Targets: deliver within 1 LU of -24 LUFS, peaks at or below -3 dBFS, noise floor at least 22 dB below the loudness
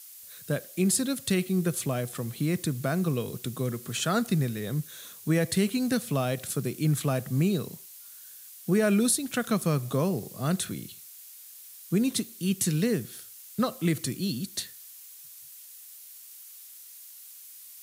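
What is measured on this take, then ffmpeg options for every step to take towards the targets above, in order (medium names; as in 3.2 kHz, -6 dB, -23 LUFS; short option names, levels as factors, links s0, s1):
noise floor -48 dBFS; noise floor target -51 dBFS; loudness -28.5 LUFS; peak level -13.0 dBFS; loudness target -24.0 LUFS
-> -af "afftdn=nr=6:nf=-48"
-af "volume=1.68"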